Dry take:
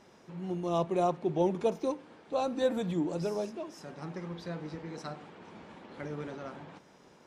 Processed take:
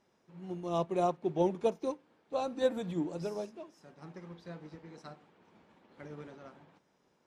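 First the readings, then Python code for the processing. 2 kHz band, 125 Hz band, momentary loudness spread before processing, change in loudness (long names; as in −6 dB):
−4.5 dB, −4.5 dB, 18 LU, 0.0 dB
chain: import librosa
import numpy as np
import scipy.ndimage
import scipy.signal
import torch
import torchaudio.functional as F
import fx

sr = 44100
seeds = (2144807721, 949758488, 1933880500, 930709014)

y = fx.upward_expand(x, sr, threshold_db=-51.0, expansion=1.5)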